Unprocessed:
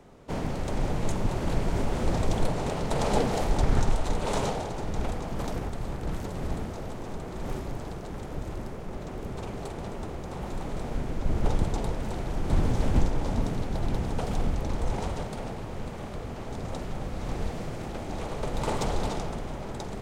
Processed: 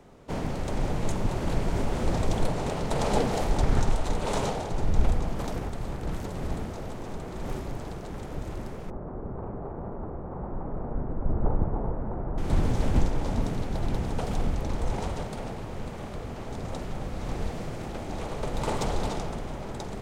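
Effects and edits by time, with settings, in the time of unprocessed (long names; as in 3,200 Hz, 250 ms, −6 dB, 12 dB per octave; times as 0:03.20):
0:04.71–0:05.32: low-shelf EQ 120 Hz +10.5 dB
0:08.90–0:12.38: low-pass filter 1,300 Hz 24 dB per octave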